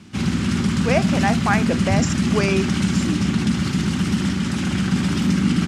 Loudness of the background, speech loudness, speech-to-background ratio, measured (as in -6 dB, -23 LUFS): -20.5 LUFS, -25.0 LUFS, -4.5 dB